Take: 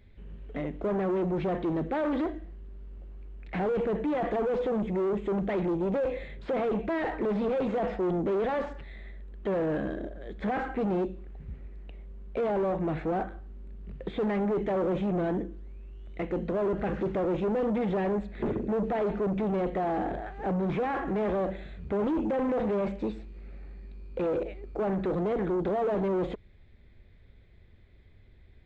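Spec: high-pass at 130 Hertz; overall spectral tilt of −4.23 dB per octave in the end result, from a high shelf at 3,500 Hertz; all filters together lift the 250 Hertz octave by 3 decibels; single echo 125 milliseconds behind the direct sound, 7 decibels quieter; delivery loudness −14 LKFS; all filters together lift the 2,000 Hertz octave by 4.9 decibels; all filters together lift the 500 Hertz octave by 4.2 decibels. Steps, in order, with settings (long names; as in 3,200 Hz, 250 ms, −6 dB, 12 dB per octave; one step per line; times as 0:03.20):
high-pass filter 130 Hz
parametric band 250 Hz +3.5 dB
parametric band 500 Hz +4 dB
parametric band 2,000 Hz +7 dB
high-shelf EQ 3,500 Hz −5 dB
single-tap delay 125 ms −7 dB
level +12 dB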